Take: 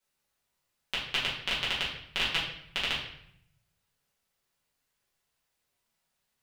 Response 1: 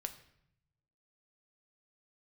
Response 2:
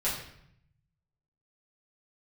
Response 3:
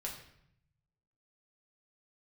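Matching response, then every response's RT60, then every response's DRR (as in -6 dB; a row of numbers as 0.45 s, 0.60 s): 2; 0.70 s, 0.70 s, 0.70 s; 7.0 dB, -8.5 dB, -2.0 dB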